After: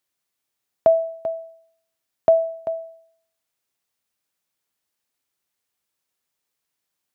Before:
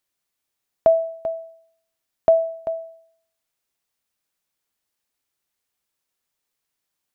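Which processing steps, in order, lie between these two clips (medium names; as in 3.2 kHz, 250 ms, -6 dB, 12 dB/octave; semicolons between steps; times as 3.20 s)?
high-pass 62 Hz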